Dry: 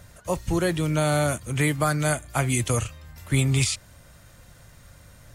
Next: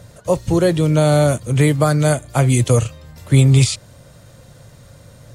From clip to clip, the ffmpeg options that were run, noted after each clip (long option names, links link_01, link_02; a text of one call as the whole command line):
ffmpeg -i in.wav -af "equalizer=frequency=125:width_type=o:width=1:gain=11,equalizer=frequency=250:width_type=o:width=1:gain=5,equalizer=frequency=500:width_type=o:width=1:gain=11,equalizer=frequency=1000:width_type=o:width=1:gain=3,equalizer=frequency=4000:width_type=o:width=1:gain=6,equalizer=frequency=8000:width_type=o:width=1:gain=4,volume=-1dB" out.wav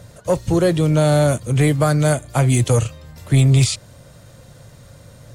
ffmpeg -i in.wav -af "asoftclip=type=tanh:threshold=-6dB" out.wav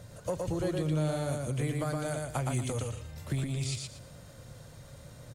ffmpeg -i in.wav -filter_complex "[0:a]acompressor=threshold=-23dB:ratio=6,asplit=2[link_01][link_02];[link_02]aecho=0:1:117|234|351|468:0.708|0.184|0.0479|0.0124[link_03];[link_01][link_03]amix=inputs=2:normalize=0,volume=-7.5dB" out.wav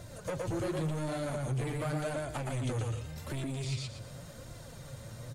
ffmpeg -i in.wav -filter_complex "[0:a]acrossover=split=4900[link_01][link_02];[link_01]asoftclip=type=tanh:threshold=-35dB[link_03];[link_02]acompressor=threshold=-55dB:ratio=6[link_04];[link_03][link_04]amix=inputs=2:normalize=0,flanger=delay=2.9:depth=6.3:regen=40:speed=0.88:shape=sinusoidal,volume=7.5dB" out.wav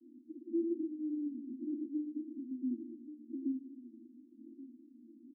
ffmpeg -i in.wav -af "asuperpass=centerf=280:order=20:qfactor=2.3,aecho=1:1:1131:0.168,volume=4.5dB" out.wav